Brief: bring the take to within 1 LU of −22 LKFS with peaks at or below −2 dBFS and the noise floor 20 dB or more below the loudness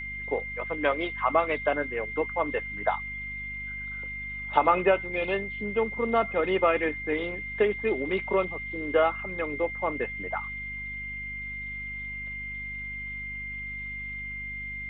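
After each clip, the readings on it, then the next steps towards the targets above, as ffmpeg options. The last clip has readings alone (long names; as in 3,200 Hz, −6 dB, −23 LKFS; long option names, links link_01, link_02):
mains hum 50 Hz; hum harmonics up to 250 Hz; level of the hum −42 dBFS; interfering tone 2,100 Hz; level of the tone −34 dBFS; integrated loudness −29.0 LKFS; sample peak −6.0 dBFS; target loudness −22.0 LKFS
→ -af "bandreject=frequency=50:width_type=h:width=4,bandreject=frequency=100:width_type=h:width=4,bandreject=frequency=150:width_type=h:width=4,bandreject=frequency=200:width_type=h:width=4,bandreject=frequency=250:width_type=h:width=4"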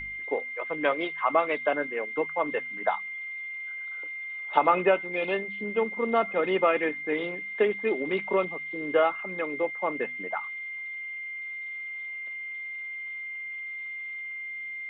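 mains hum none found; interfering tone 2,100 Hz; level of the tone −34 dBFS
→ -af "bandreject=frequency=2100:width=30"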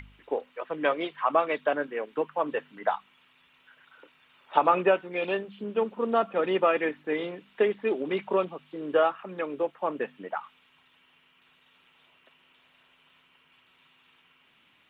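interfering tone none found; integrated loudness −28.5 LKFS; sample peak −6.0 dBFS; target loudness −22.0 LKFS
→ -af "volume=6.5dB,alimiter=limit=-2dB:level=0:latency=1"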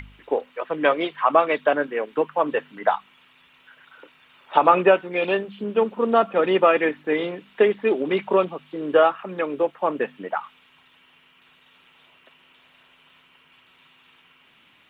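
integrated loudness −22.0 LKFS; sample peak −2.0 dBFS; background noise floor −57 dBFS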